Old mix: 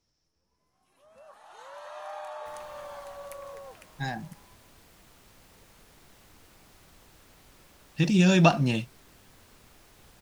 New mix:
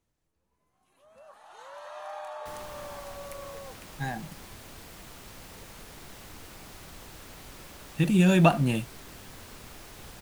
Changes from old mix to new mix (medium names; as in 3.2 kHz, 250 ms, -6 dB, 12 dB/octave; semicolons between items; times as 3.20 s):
speech: remove resonant low-pass 5.4 kHz, resonance Q 12; second sound +10.0 dB